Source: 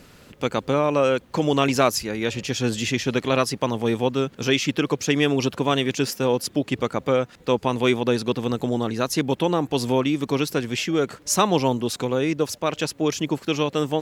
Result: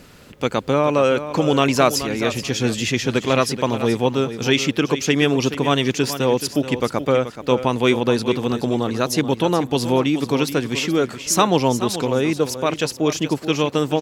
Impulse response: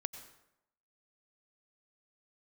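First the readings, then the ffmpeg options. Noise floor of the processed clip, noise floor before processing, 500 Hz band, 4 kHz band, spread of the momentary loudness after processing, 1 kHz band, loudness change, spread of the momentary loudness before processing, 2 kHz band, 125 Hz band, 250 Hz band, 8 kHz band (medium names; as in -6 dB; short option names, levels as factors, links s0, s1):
-40 dBFS, -51 dBFS, +3.0 dB, +3.5 dB, 5 LU, +3.5 dB, +3.0 dB, 5 LU, +3.5 dB, +3.5 dB, +3.0 dB, +3.5 dB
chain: -af "aecho=1:1:428|856|1284:0.266|0.0559|0.0117,volume=1.41"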